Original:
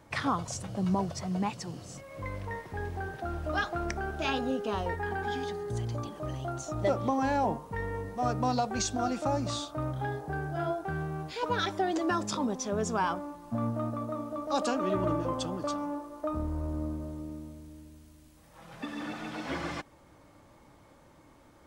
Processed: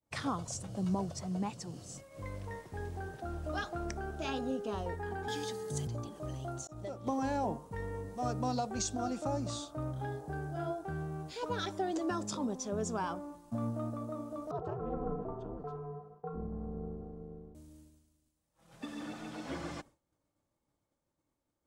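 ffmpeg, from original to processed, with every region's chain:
-filter_complex "[0:a]asettb=1/sr,asplit=3[a][b][c];[a]atrim=end=5.284[d];[b]atrim=start=5.28:end=5.87,asetpts=PTS-STARTPTS,afade=t=in:d=0.004:c=qsin,afade=t=out:st=0.586:d=0.004:c=qsin,highshelf=f=2.1k:g=12,afreqshift=27[e];[c]atrim=start=5.866[f];[d][e]acrossfade=d=0.004:c1=hsin:c2=qsin[g];[g][f]acrossfade=d=0.004:c1=qsin:c2=hsin,asettb=1/sr,asplit=3[h][i][j];[h]atrim=end=6.674[k];[i]atrim=start=6.67:end=7.07,asetpts=PTS-STARTPTS,afade=t=in:d=0.004:c=qsin,afade=t=out:st=0.396:d=0.004:c=qsin,agate=range=-33dB:threshold=-28dB:ratio=3:release=100:detection=peak,acompressor=threshold=-35dB:ratio=3:attack=3.2:release=140:knee=1:detection=peak[l];[j]atrim=start=7.066[m];[k][l]acrossfade=d=0.004:c1=hsin:c2=qsin[n];[n][m]acrossfade=d=0.004:c1=qsin:c2=hsin,asettb=1/sr,asplit=3[o][p][q];[o]atrim=end=14.514[r];[p]atrim=start=14.51:end=17.55,asetpts=PTS-STARTPTS,afade=t=in:d=0.004:c=qsin,afade=t=out:st=3.036:d=0.004:c=qsin,lowpass=1.1k,aeval=exprs='val(0)*sin(2*PI*140*n/s)':c=same[s];[q]atrim=start=17.546[t];[r][s]acrossfade=d=0.004:c1=hsin:c2=qsin[u];[u][t]acrossfade=d=0.004:c1=qsin:c2=hsin,equalizer=f=1k:t=o:w=1:g=-3,equalizer=f=2k:t=o:w=1:g=-4,equalizer=f=8k:t=o:w=1:g=6,agate=range=-33dB:threshold=-44dB:ratio=3:detection=peak,adynamicequalizer=threshold=0.00398:dfrequency=1900:dqfactor=0.7:tfrequency=1900:tqfactor=0.7:attack=5:release=100:ratio=0.375:range=2:mode=cutabove:tftype=highshelf,volume=-4dB"

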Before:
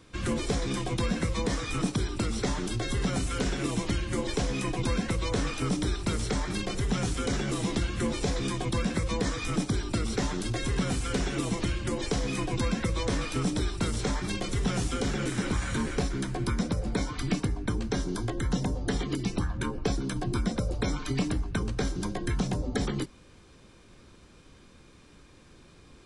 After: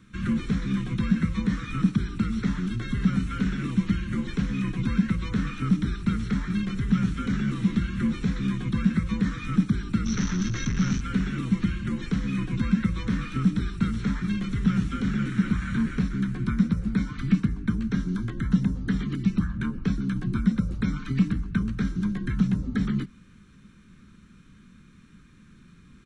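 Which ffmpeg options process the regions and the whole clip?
-filter_complex "[0:a]asettb=1/sr,asplit=3[a][b][c];[a]atrim=end=10.054[d];[b]atrim=start=10.05:end=11.01,asetpts=PTS-STARTPTS,afade=t=in:d=0.004:c=qsin,afade=t=out:st=0.956:d=0.004:c=qsin,aeval=exprs='(tanh(39.8*val(0)+0.45)-tanh(0.45))/39.8':c=same,acontrast=71,lowpass=f=6k:t=q:w=14[e];[c]atrim=start=11.006[f];[d][e]acrossfade=d=0.004:c1=hsin:c2=qsin[g];[g][f]acrossfade=d=0.004:c1=qsin:c2=hsin,bandreject=f=4.9k:w=8,acrossover=split=4700[h][i];[i]acompressor=threshold=-53dB:ratio=4:attack=1:release=60[j];[h][j]amix=inputs=2:normalize=0,firequalizer=gain_entry='entry(100,0);entry(200,11);entry(300,-4);entry(660,-20);entry(1300,2);entry(2900,-4);entry(8900,-6)':delay=0.05:min_phase=1"

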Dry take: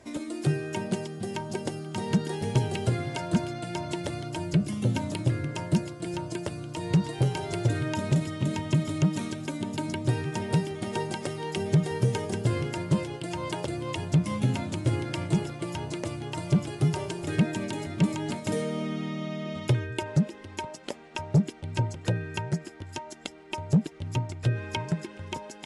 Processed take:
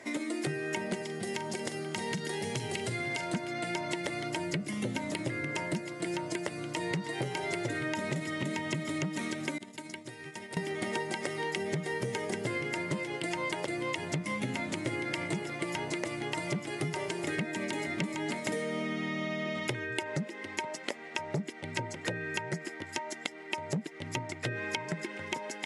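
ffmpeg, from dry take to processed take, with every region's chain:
-filter_complex "[0:a]asettb=1/sr,asplit=3[a][b][c];[a]atrim=end=1.024[d];[b]atrim=start=1.02:end=3.34,asetpts=PTS-STARTPTS,afade=t=in:d=0.004:c=qsin,afade=t=out:st=2.316:d=0.004:c=qsin,acrossover=split=140|3000[e][f][g];[f]acompressor=threshold=-35dB:ratio=6:attack=3.2:release=140:knee=2.83:detection=peak[h];[e][h][g]amix=inputs=3:normalize=0,asplit=2[i][j];[j]adelay=43,volume=-12.5dB[k];[i][k]amix=inputs=2:normalize=0,atrim=end_sample=102312[l];[c]atrim=start=3.336[m];[d][l]acrossfade=d=0.004:c1=hsin:c2=qsin[n];[n][m]acrossfade=d=0.004:c1=qsin:c2=hsin,asettb=1/sr,asplit=3[o][p][q];[o]atrim=end=9.584[r];[p]atrim=start=9.58:end=10.57,asetpts=PTS-STARTPTS,afade=t=in:d=0.004:c=qsin,afade=t=out:st=0.986:d=0.004:c=qsin,agate=range=-33dB:threshold=-23dB:ratio=3:release=100:detection=peak,highshelf=f=2.7k:g=8,acompressor=threshold=-40dB:ratio=16:attack=3.2:release=140:knee=1:detection=peak[s];[q]atrim=start=10.566[t];[r][s]acrossfade=d=0.004:c1=hsin:c2=qsin[u];[u][t]acrossfade=d=0.004:c1=qsin:c2=hsin,highpass=220,equalizer=f=2k:w=4.3:g=12,acompressor=threshold=-34dB:ratio=6,volume=3.5dB"

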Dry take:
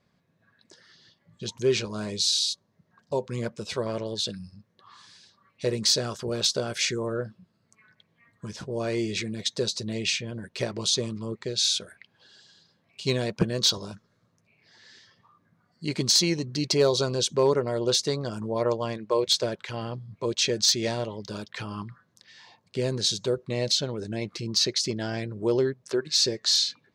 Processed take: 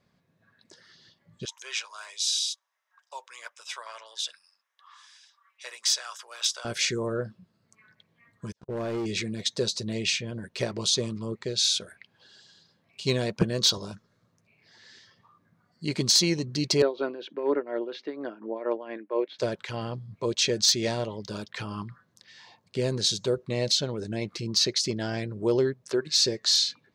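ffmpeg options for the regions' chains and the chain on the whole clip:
-filter_complex "[0:a]asettb=1/sr,asplit=3[a][b][c];[a]atrim=end=1.454[d];[b]atrim=start=1.45:end=6.65,asetpts=PTS-STARTPTS,afade=t=in:d=0.004:c=qsin,afade=t=out:st=5.196:d=0.004:c=qsin,highpass=f=960:w=0.5412,highpass=f=960:w=1.3066,bandreject=f=4.3k:w=5.4[e];[c]atrim=start=6.646[f];[d][e]acrossfade=d=0.004:c1=hsin:c2=qsin[g];[g][f]acrossfade=d=0.004:c1=qsin:c2=hsin,asettb=1/sr,asplit=3[h][i][j];[h]atrim=end=8.524[k];[i]atrim=start=8.52:end=9.06,asetpts=PTS-STARTPTS,afade=t=in:d=0.004:c=qsin,afade=t=out:st=0.536:d=0.004:c=qsin,agate=range=-36dB:threshold=-36dB:ratio=16:release=100:detection=peak,highshelf=f=2.6k:g=-9.5,volume=27.5dB,asoftclip=hard,volume=-27.5dB[l];[j]atrim=start=9.056[m];[k][l]acrossfade=d=0.004:c1=hsin:c2=qsin[n];[n][m]acrossfade=d=0.004:c1=qsin:c2=hsin,asettb=1/sr,asplit=3[o][p][q];[o]atrim=end=16.824[r];[p]atrim=start=16.82:end=19.39,asetpts=PTS-STARTPTS,afade=t=in:d=0.004:c=qsin,afade=t=out:st=2.566:d=0.004:c=qsin,tremolo=f=4.2:d=0.73,highpass=f=280:w=0.5412,highpass=f=280:w=1.3066,equalizer=f=290:t=q:w=4:g=8,equalizer=f=480:t=q:w=4:g=-3,equalizer=f=1.1k:t=q:w=4:g=-4,equalizer=f=1.7k:t=q:w=4:g=4,lowpass=f=2.6k:w=0.5412,lowpass=f=2.6k:w=1.3066[s];[q]atrim=start=19.386[t];[r][s]acrossfade=d=0.004:c1=hsin:c2=qsin[u];[u][t]acrossfade=d=0.004:c1=qsin:c2=hsin"

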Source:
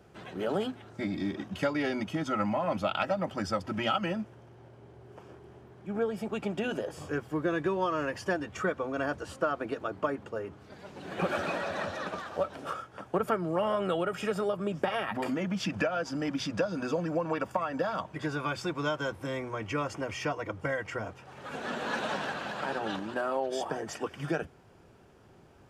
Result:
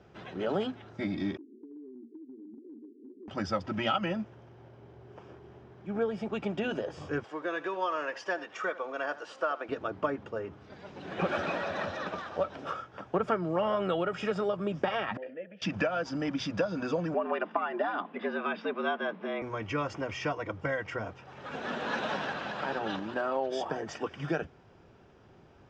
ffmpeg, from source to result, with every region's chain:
-filter_complex "[0:a]asettb=1/sr,asplit=3[a][b][c];[a]atrim=end=1.374[d];[b]atrim=start=1.37:end=3.28,asetpts=PTS-STARTPTS,afade=t=in:d=0.004:c=qsin,afade=t=out:st=1.906:d=0.004:c=qsin,asuperpass=centerf=320:order=20:qfactor=1.5,acompressor=threshold=-44dB:ratio=12:attack=3.2:release=140:knee=1:detection=peak[e];[c]atrim=start=3.276[f];[d][e]acrossfade=d=0.004:c1=hsin:c2=qsin[g];[g][f]acrossfade=d=0.004:c1=qsin:c2=hsin,asettb=1/sr,asplit=3[h][i][j];[h]atrim=end=7.244[k];[i]atrim=start=7.24:end=9.69,asetpts=PTS-STARTPTS,afade=t=in:d=0.004:c=qsin,afade=t=out:st=2.446:d=0.004:c=qsin,highpass=510,acompressor=mode=upward:threshold=-44dB:ratio=2.5:attack=3.2:release=140:knee=2.83:detection=peak,aecho=1:1:79:0.15,atrim=end_sample=108045[l];[j]atrim=start=9.686[m];[k][l]acrossfade=d=0.004:c1=hsin:c2=qsin[n];[n][m]acrossfade=d=0.004:c1=qsin:c2=hsin,asettb=1/sr,asplit=3[o][p][q];[o]atrim=end=15.174[r];[p]atrim=start=15.17:end=15.62,asetpts=PTS-STARTPTS,afade=t=in:d=0.004:c=qsin,afade=t=out:st=0.446:d=0.004:c=qsin,asplit=3[s][t][u];[s]bandpass=f=530:t=q:w=8,volume=0dB[v];[t]bandpass=f=1.84k:t=q:w=8,volume=-6dB[w];[u]bandpass=f=2.48k:t=q:w=8,volume=-9dB[x];[v][w][x]amix=inputs=3:normalize=0,bass=f=250:g=3,treble=f=4k:g=-12[y];[q]atrim=start=15.616[z];[r][y]acrossfade=d=0.004:c1=hsin:c2=qsin[aa];[aa][z]acrossfade=d=0.004:c1=qsin:c2=hsin,asettb=1/sr,asplit=3[ab][ac][ad];[ab]atrim=end=17.144[ae];[ac]atrim=start=17.14:end=19.42,asetpts=PTS-STARTPTS,afade=t=in:d=0.004:c=qsin,afade=t=out:st=2.276:d=0.004:c=qsin,lowpass=f=3.4k:w=0.5412,lowpass=f=3.4k:w=1.3066,afreqshift=95[af];[ad]atrim=start=19.416[ag];[ae][af]acrossfade=d=0.004:c1=hsin:c2=qsin[ah];[ah][ag]acrossfade=d=0.004:c1=qsin:c2=hsin,lowpass=f=5.8k:w=0.5412,lowpass=f=5.8k:w=1.3066,bandreject=f=4.4k:w=15"

